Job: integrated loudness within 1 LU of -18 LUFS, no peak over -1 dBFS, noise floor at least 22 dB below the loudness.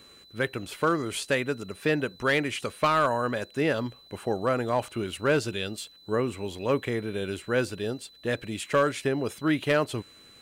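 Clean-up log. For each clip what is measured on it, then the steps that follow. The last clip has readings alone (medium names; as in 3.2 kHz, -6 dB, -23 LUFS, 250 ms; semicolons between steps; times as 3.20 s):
clipped samples 0.3%; clipping level -15.5 dBFS; steady tone 4 kHz; tone level -52 dBFS; loudness -28.0 LUFS; peak level -15.5 dBFS; loudness target -18.0 LUFS
-> clip repair -15.5 dBFS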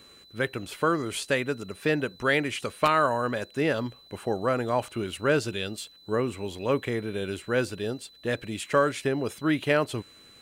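clipped samples 0.0%; steady tone 4 kHz; tone level -52 dBFS
-> band-stop 4 kHz, Q 30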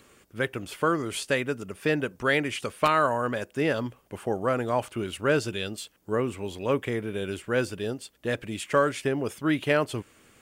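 steady tone not found; loudness -28.0 LUFS; peak level -8.5 dBFS; loudness target -18.0 LUFS
-> trim +10 dB; peak limiter -1 dBFS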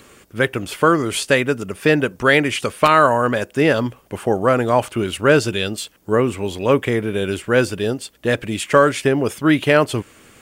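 loudness -18.0 LUFS; peak level -1.0 dBFS; noise floor -51 dBFS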